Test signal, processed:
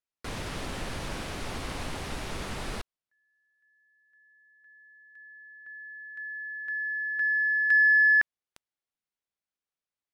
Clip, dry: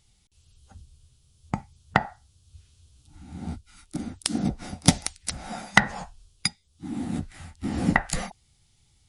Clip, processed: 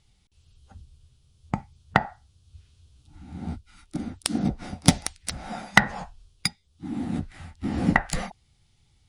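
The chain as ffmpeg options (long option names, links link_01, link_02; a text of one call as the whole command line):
ffmpeg -i in.wav -af "aexciter=amount=2:drive=1.3:freq=9200,adynamicsmooth=sensitivity=1:basefreq=6100,volume=1dB" out.wav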